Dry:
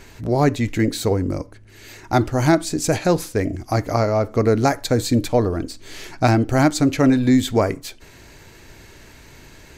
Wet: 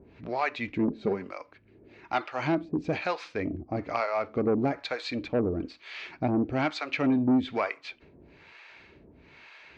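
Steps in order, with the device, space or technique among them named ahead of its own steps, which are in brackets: guitar amplifier with harmonic tremolo (harmonic tremolo 1.1 Hz, depth 100%, crossover 620 Hz; saturation -14.5 dBFS, distortion -15 dB; cabinet simulation 85–4000 Hz, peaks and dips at 110 Hz -10 dB, 1.2 kHz +3 dB, 2.4 kHz +8 dB); 0.87–1.28 s: comb 5 ms, depth 60%; trim -3 dB

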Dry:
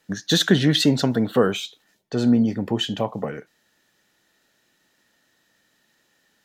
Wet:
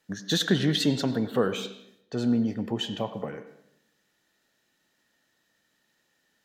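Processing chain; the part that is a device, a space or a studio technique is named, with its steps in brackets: filtered reverb send (on a send: high-pass 170 Hz 24 dB/octave + low-pass 5.1 kHz + reverberation RT60 0.75 s, pre-delay 77 ms, DRR 11 dB); on the sum: trim -6.5 dB

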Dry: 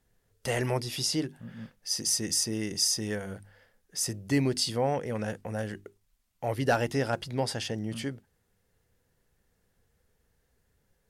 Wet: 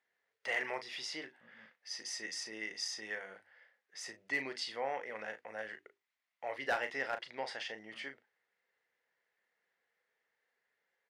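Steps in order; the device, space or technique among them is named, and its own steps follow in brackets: megaphone (band-pass 630–3800 Hz; peaking EQ 2 kHz +9.5 dB 0.44 oct; hard clipper -20 dBFS, distortion -20 dB; doubling 37 ms -9.5 dB); trim -6 dB

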